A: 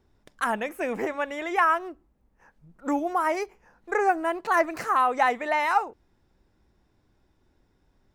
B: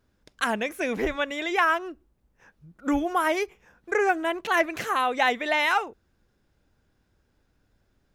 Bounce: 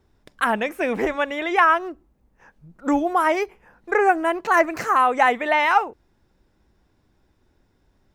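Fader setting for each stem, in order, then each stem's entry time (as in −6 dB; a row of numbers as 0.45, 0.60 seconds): +2.5, −5.0 decibels; 0.00, 0.00 seconds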